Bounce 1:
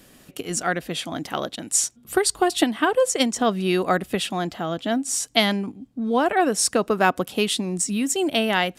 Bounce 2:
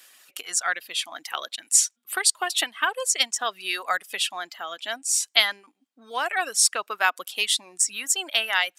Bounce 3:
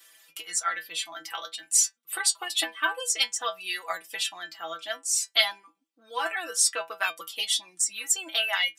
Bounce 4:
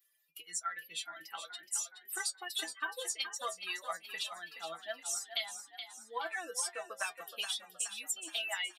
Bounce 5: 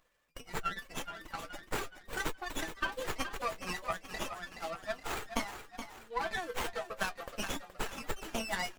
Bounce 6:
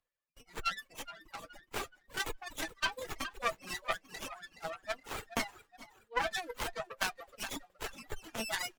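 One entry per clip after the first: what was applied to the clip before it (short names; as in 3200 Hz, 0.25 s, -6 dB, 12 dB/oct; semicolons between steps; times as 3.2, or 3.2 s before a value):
HPF 1300 Hz 12 dB/oct; reverb removal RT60 1 s; gain +3 dB
metallic resonator 160 Hz, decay 0.2 s, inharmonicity 0.002; gain +7 dB
per-bin expansion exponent 1.5; compressor 6:1, threshold -32 dBFS, peak gain reduction 14 dB; on a send: frequency-shifting echo 0.422 s, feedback 50%, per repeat +39 Hz, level -9.5 dB; on the sum: gain -2 dB
running maximum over 9 samples; gain +4 dB
added harmonics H 4 -21 dB, 6 -18 dB, 7 -29 dB, 8 -14 dB, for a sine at -14.5 dBFS; reverb removal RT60 1 s; three-band expander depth 40%; gain +1 dB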